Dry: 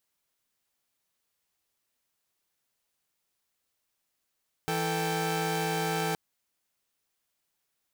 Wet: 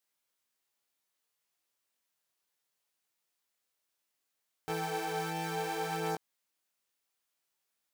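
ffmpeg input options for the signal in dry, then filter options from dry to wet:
-f lavfi -i "aevalsrc='0.0335*((2*mod(164.81*t,1)-1)+(2*mod(440*t,1)-1)+(2*mod(783.99*t,1)-1))':d=1.47:s=44100"
-filter_complex "[0:a]acrossover=split=1300[a][b];[b]alimiter=level_in=4.5dB:limit=-24dB:level=0:latency=1,volume=-4.5dB[c];[a][c]amix=inputs=2:normalize=0,lowshelf=f=180:g=-11,flanger=delay=18:depth=5.9:speed=0.65"

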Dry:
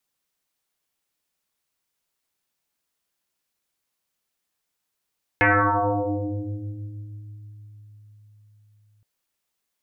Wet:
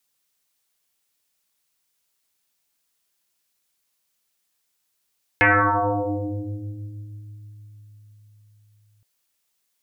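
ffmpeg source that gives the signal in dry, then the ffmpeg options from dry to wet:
-f lavfi -i "aevalsrc='0.2*pow(10,-3*t/4.9)*sin(2*PI*105*t+11*pow(10,-3*t/3.35)*sin(2*PI*1.94*105*t))':d=3.62:s=44100"
-af "highshelf=f=2.4k:g=7.5"

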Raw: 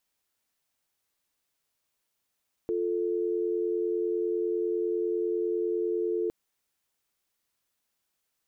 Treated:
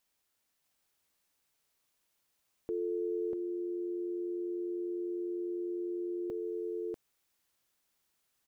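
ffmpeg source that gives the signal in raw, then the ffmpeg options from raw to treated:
-f lavfi -i "aevalsrc='0.0376*(sin(2*PI*350*t)+sin(2*PI*440*t))':d=3.61:s=44100"
-filter_complex "[0:a]alimiter=level_in=4dB:limit=-24dB:level=0:latency=1:release=233,volume=-4dB,asplit=2[a][b];[b]aecho=0:1:642:0.708[c];[a][c]amix=inputs=2:normalize=0"

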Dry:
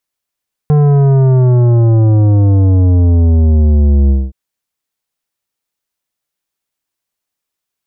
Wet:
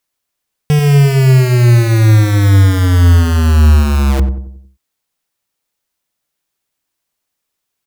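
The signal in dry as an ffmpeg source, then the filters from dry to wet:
-f lavfi -i "aevalsrc='0.447*clip((3.62-t)/0.22,0,1)*tanh(3.76*sin(2*PI*150*3.62/log(65/150)*(exp(log(65/150)*t/3.62)-1)))/tanh(3.76)':d=3.62:s=44100"
-filter_complex "[0:a]asplit=2[a][b];[b]aeval=exprs='(mod(3.98*val(0)+1,2)-1)/3.98':c=same,volume=-3.5dB[c];[a][c]amix=inputs=2:normalize=0,asplit=2[d][e];[e]adelay=91,lowpass=f=820:p=1,volume=-8dB,asplit=2[f][g];[g]adelay=91,lowpass=f=820:p=1,volume=0.47,asplit=2[h][i];[i]adelay=91,lowpass=f=820:p=1,volume=0.47,asplit=2[j][k];[k]adelay=91,lowpass=f=820:p=1,volume=0.47,asplit=2[l][m];[m]adelay=91,lowpass=f=820:p=1,volume=0.47[n];[d][f][h][j][l][n]amix=inputs=6:normalize=0"

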